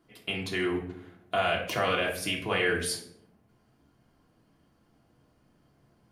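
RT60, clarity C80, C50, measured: 0.70 s, 11.5 dB, 8.0 dB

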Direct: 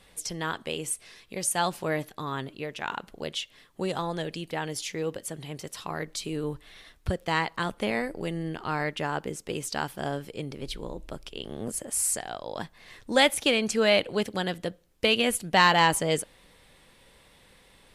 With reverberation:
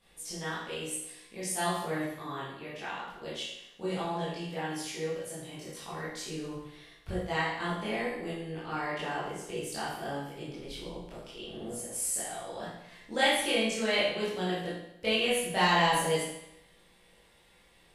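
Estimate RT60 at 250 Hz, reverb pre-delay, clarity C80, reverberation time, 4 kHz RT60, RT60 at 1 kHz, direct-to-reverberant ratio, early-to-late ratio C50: 0.80 s, 16 ms, 4.0 dB, 0.80 s, 0.80 s, 0.80 s, −10.5 dB, 0.0 dB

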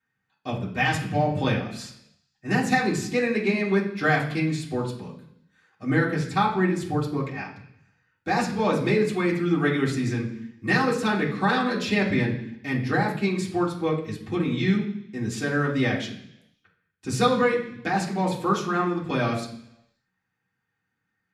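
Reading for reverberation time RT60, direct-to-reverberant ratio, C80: 0.70 s, −8.5 dB, 11.5 dB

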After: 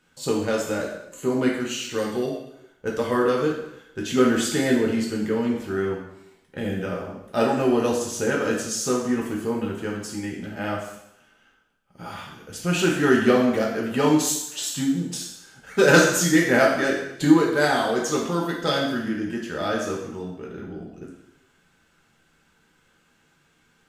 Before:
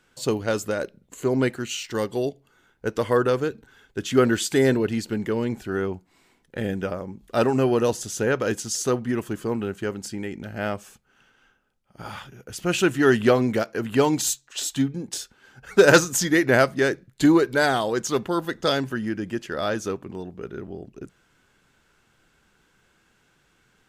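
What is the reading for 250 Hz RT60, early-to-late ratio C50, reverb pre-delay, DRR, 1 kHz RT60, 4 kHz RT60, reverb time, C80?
0.75 s, 3.5 dB, 3 ms, −3.0 dB, 0.80 s, 0.80 s, 0.80 s, 6.5 dB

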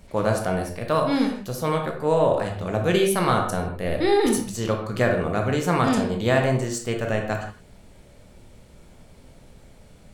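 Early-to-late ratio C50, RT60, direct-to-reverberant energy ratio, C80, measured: 5.5 dB, non-exponential decay, 2.0 dB, 9.0 dB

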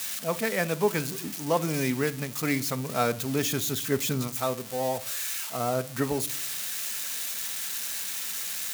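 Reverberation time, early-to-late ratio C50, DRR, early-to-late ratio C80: non-exponential decay, 19.5 dB, 11.5 dB, 26.0 dB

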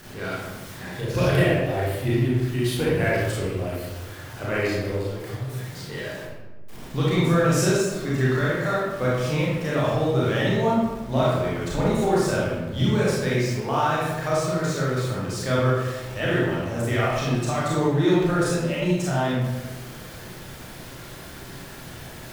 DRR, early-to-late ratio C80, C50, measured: −7.0 dB, 1.5 dB, −2.0 dB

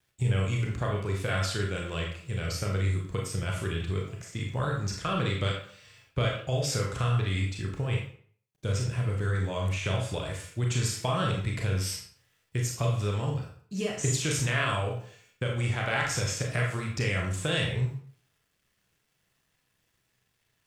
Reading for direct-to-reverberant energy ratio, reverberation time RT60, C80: −0.5 dB, 0.50 s, 8.0 dB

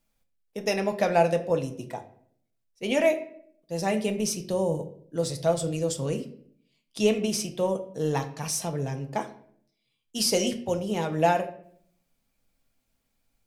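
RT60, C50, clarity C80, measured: 0.60 s, 12.5 dB, 16.0 dB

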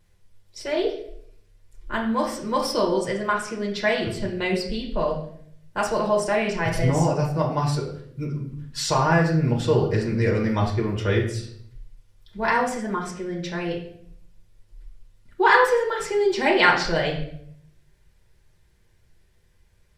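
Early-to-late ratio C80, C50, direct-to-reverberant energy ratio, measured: 9.5 dB, 6.5 dB, −2.5 dB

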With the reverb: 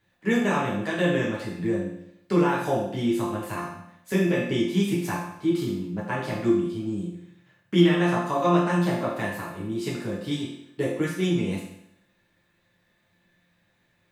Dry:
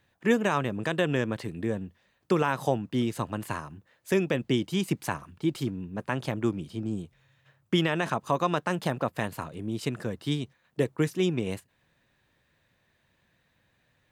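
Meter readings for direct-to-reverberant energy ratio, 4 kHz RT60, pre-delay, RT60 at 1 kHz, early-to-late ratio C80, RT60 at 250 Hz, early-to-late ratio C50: −6.5 dB, 0.75 s, 6 ms, 0.75 s, 6.0 dB, 0.75 s, 2.5 dB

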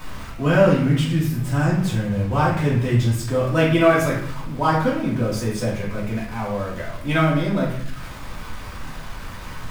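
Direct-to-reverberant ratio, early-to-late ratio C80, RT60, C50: −6.0 dB, 7.5 dB, 0.70 s, 3.5 dB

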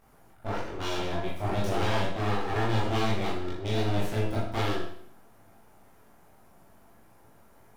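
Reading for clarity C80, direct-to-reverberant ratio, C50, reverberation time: 6.0 dB, −6.5 dB, 2.0 dB, 0.60 s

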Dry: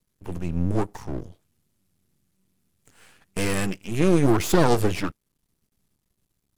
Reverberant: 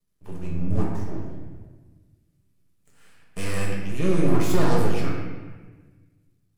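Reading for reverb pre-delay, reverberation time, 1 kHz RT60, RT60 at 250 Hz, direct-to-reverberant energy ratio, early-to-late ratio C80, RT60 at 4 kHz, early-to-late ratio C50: 5 ms, 1.4 s, 1.3 s, 1.7 s, −3.5 dB, 3.0 dB, 1.0 s, 1.0 dB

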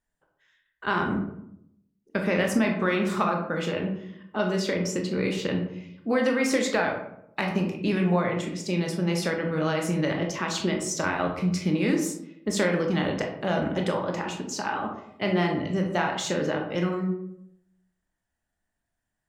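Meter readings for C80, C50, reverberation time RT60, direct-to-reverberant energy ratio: 9.5 dB, 6.0 dB, 0.75 s, 1.5 dB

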